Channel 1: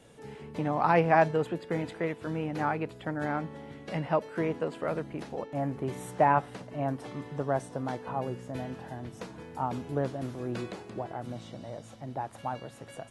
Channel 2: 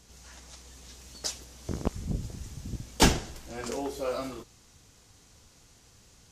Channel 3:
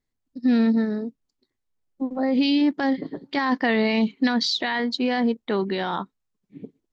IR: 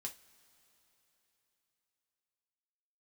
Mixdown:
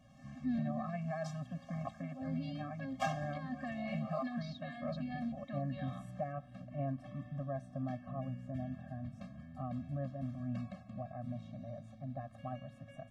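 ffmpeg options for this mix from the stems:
-filter_complex "[0:a]volume=-1.5dB[link_01];[1:a]highpass=frequency=850:width_type=q:width=6.9,aecho=1:1:7.4:0.57,volume=-9dB,asplit=2[link_02][link_03];[link_03]volume=-9dB[link_04];[2:a]highpass=280,volume=-10.5dB,asplit=2[link_05][link_06];[link_06]apad=whole_len=278997[link_07];[link_02][link_07]sidechaincompress=threshold=-42dB:ratio=8:attack=16:release=129[link_08];[link_01][link_05]amix=inputs=2:normalize=0,equalizer=frequency=900:width_type=o:width=1.4:gain=-5.5,alimiter=level_in=1dB:limit=-24dB:level=0:latency=1:release=295,volume=-1dB,volume=0dB[link_09];[3:a]atrim=start_sample=2205[link_10];[link_04][link_10]afir=irnorm=-1:irlink=0[link_11];[link_08][link_09][link_11]amix=inputs=3:normalize=0,lowpass=frequency=1200:poles=1,afftfilt=real='re*eq(mod(floor(b*sr/1024/260),2),0)':imag='im*eq(mod(floor(b*sr/1024/260),2),0)':win_size=1024:overlap=0.75"

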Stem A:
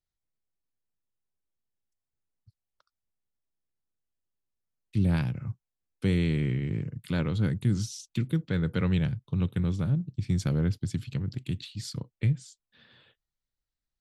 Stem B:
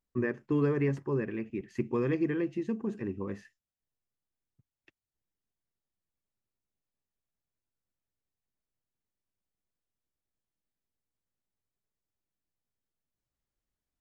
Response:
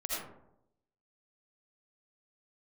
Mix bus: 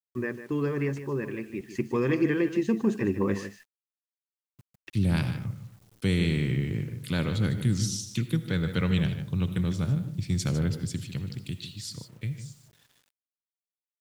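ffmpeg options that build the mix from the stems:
-filter_complex "[0:a]volume=-15dB,asplit=3[link_01][link_02][link_03];[link_02]volume=-13dB[link_04];[link_03]volume=-10.5dB[link_05];[1:a]volume=-1.5dB,asplit=2[link_06][link_07];[link_07]volume=-12dB[link_08];[2:a]atrim=start_sample=2205[link_09];[link_04][link_09]afir=irnorm=-1:irlink=0[link_10];[link_05][link_08]amix=inputs=2:normalize=0,aecho=0:1:151:1[link_11];[link_01][link_06][link_10][link_11]amix=inputs=4:normalize=0,dynaudnorm=framelen=330:gausssize=17:maxgain=13.5dB,highshelf=frequency=2500:gain=8.5,acrusher=bits=9:mix=0:aa=0.000001"

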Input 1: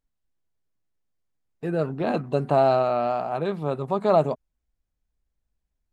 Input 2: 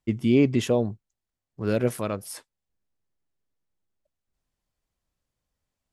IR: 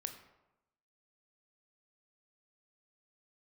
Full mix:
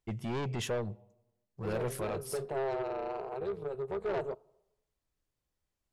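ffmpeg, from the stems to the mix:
-filter_complex "[0:a]tremolo=f=270:d=0.889,equalizer=frequency=410:width_type=o:width=0.54:gain=13.5,volume=-10.5dB,asplit=2[link_01][link_02];[link_02]volume=-17dB[link_03];[1:a]volume=-5.5dB,asplit=2[link_04][link_05];[link_05]volume=-13dB[link_06];[2:a]atrim=start_sample=2205[link_07];[link_03][link_06]amix=inputs=2:normalize=0[link_08];[link_08][link_07]afir=irnorm=-1:irlink=0[link_09];[link_01][link_04][link_09]amix=inputs=3:normalize=0,asoftclip=type=tanh:threshold=-27dB,equalizer=frequency=270:width=3.3:gain=-13.5"

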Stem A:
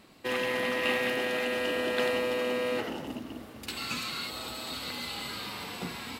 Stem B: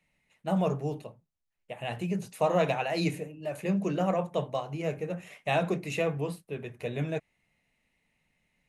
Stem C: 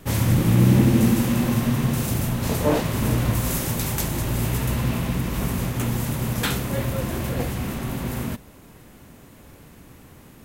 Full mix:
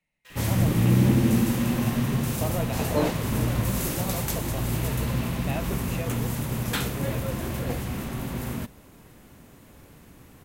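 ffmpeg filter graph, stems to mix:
ffmpeg -i stem1.wav -i stem2.wav -i stem3.wav -filter_complex "[0:a]highpass=1400,acrusher=bits=5:mix=0:aa=0.5,volume=-14dB[link_01];[1:a]volume=-7dB[link_02];[2:a]adelay=300,volume=-3.5dB[link_03];[link_01][link_02][link_03]amix=inputs=3:normalize=0" out.wav

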